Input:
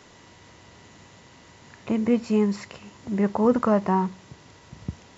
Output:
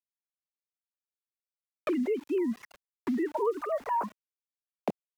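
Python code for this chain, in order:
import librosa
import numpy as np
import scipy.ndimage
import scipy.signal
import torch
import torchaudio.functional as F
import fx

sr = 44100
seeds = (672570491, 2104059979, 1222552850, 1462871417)

y = fx.sine_speech(x, sr)
y = scipy.signal.sosfilt(scipy.signal.butter(2, 210.0, 'highpass', fs=sr, output='sos'), y)
y = np.where(np.abs(y) >= 10.0 ** (-40.0 / 20.0), y, 0.0)
y = fx.vibrato(y, sr, rate_hz=6.5, depth_cents=63.0)
y = fx.band_squash(y, sr, depth_pct=100)
y = y * 10.0 ** (-7.0 / 20.0)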